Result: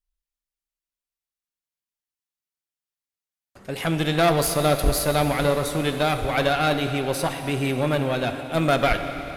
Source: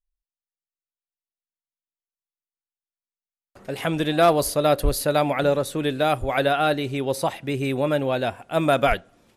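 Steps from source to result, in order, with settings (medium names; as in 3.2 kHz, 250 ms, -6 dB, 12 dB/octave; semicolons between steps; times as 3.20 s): peaking EQ 560 Hz -4 dB 2.2 oct; valve stage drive 17 dB, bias 0.6; plate-style reverb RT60 3.9 s, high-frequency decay 0.95×, DRR 6.5 dB; trim +5 dB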